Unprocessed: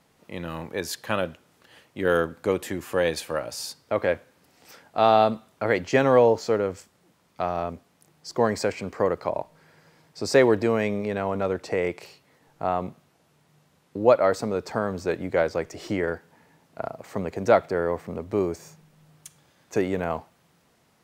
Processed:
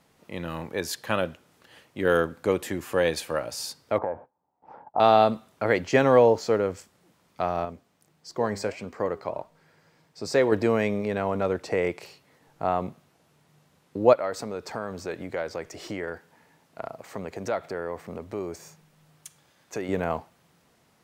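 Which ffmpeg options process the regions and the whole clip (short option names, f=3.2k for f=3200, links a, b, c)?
-filter_complex "[0:a]asettb=1/sr,asplit=3[a][b][c];[a]atrim=end=3.984[d];[b]atrim=start=3.98:end=5,asetpts=PTS-STARTPTS,afade=t=in:d=0.004:c=qsin,afade=t=out:st=1.016:d=0.004:c=qsin,agate=range=-22dB:threshold=-55dB:ratio=16:release=100:detection=peak,acompressor=threshold=-29dB:ratio=6:attack=3.2:release=140:knee=1:detection=peak,lowpass=f=870:t=q:w=6.6[e];[c]atrim=start=4.996[f];[d][e]acrossfade=d=0.004:c1=hsin:c2=qsin[g];[g][f]acrossfade=d=0.004:c1=qsin:c2=hsin,asettb=1/sr,asplit=3[h][i][j];[h]atrim=end=7.654[k];[i]atrim=start=7.65:end=10.52,asetpts=PTS-STARTPTS,afade=t=in:d=0.004:c=qsin,afade=t=out:st=2.866:d=0.004:c=qsin,equalizer=f=11k:w=6.9:g=-9,flanger=delay=4:depth=6.1:regen=82:speed=1.6:shape=sinusoidal[l];[j]atrim=start=10.516[m];[k][l]acrossfade=d=0.004:c1=hsin:c2=qsin[n];[n][m]acrossfade=d=0.004:c1=qsin:c2=hsin,asettb=1/sr,asplit=3[o][p][q];[o]atrim=end=14.134[r];[p]atrim=start=14.13:end=19.89,asetpts=PTS-STARTPTS,afade=t=in:d=0.004:c=qsin,afade=t=out:st=5.756:d=0.004:c=qsin,acompressor=threshold=-28dB:ratio=2:attack=3.2:release=140:knee=1:detection=peak,lowshelf=f=490:g=-4.5[s];[q]atrim=start=19.886[t];[r][s]acrossfade=d=0.004:c1=hsin:c2=qsin[u];[u][t]acrossfade=d=0.004:c1=qsin:c2=hsin"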